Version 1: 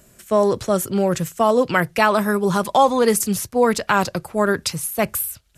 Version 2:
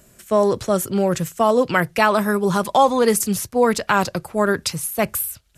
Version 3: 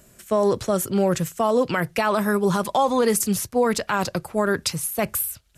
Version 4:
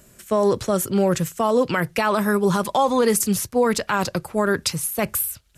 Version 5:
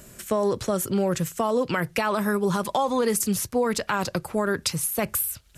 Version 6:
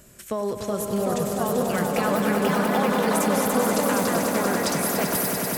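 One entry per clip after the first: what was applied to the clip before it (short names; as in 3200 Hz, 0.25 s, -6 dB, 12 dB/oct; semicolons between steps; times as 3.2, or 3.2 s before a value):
nothing audible
limiter -9.5 dBFS, peak gain reduction 8 dB; gain -1 dB
bell 690 Hz -3 dB 0.27 oct; gain +1.5 dB
compressor 2:1, threshold -32 dBFS, peak gain reduction 10 dB; gain +4.5 dB
echoes that change speed 0.799 s, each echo +3 st, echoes 2; swelling echo 97 ms, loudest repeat 5, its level -8 dB; ending taper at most 180 dB/s; gain -4 dB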